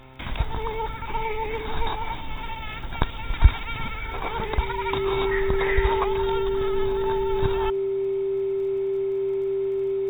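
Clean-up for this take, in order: de-click; de-hum 131.1 Hz, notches 8; band-stop 390 Hz, Q 30

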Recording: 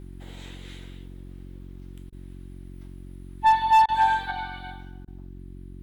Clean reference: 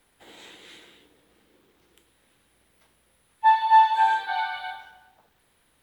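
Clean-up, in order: clip repair -12.5 dBFS; de-hum 45.6 Hz, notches 8; interpolate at 2.10/3.86/5.05 s, 24 ms; gain correction +6 dB, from 4.31 s

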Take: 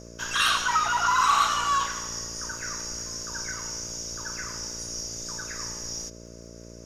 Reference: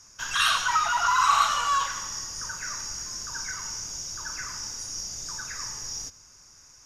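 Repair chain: clip repair -13.5 dBFS; de-click; de-hum 57.9 Hz, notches 11

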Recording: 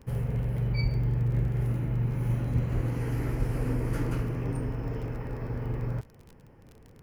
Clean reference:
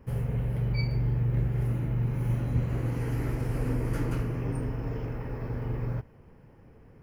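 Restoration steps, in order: de-click; 0.82–0.94 s: high-pass 140 Hz 24 dB/octave; 2.74–2.86 s: high-pass 140 Hz 24 dB/octave; 3.38–3.50 s: high-pass 140 Hz 24 dB/octave

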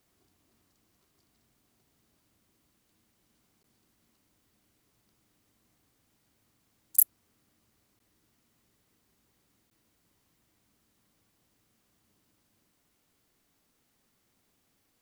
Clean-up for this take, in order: clip repair -4.5 dBFS; interpolate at 3.63/7.99/9.70 s, 12 ms

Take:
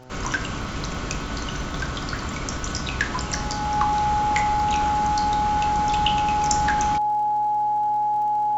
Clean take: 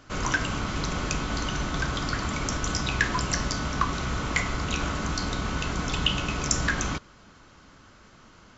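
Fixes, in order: de-click; de-hum 127.4 Hz, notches 7; band-stop 840 Hz, Q 30

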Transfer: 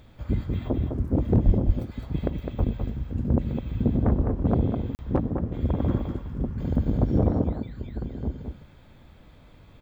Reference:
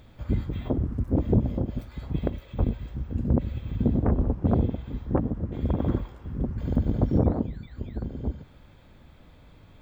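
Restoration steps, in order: clip repair -11 dBFS; 1.45–1.57 s: high-pass 140 Hz 24 dB/octave; interpolate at 4.95 s, 39 ms; inverse comb 207 ms -6 dB

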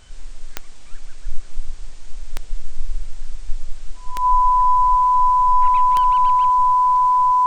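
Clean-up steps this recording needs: de-click; band-stop 1 kHz, Q 30

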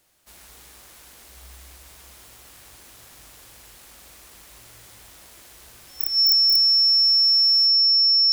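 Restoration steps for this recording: band-stop 5.4 kHz, Q 30

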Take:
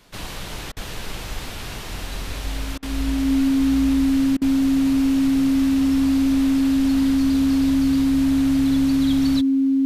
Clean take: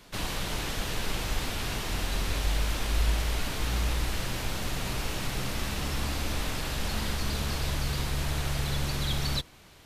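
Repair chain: band-stop 270 Hz, Q 30; interpolate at 0.72/2.78/4.37 s, 45 ms

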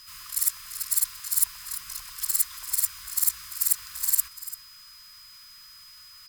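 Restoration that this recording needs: band-stop 5 kHz, Q 30; inverse comb 341 ms -14.5 dB

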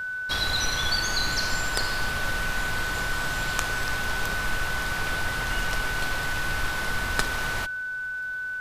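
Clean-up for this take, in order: de-click; band-stop 1.5 kHz, Q 30

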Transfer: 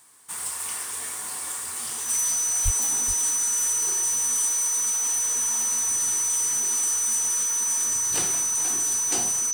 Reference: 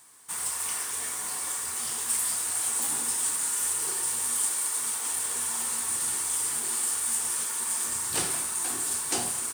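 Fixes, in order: clip repair -14.5 dBFS; band-stop 6 kHz, Q 30; 2.64–2.76 s: high-pass 140 Hz 24 dB/octave; inverse comb 425 ms -14 dB

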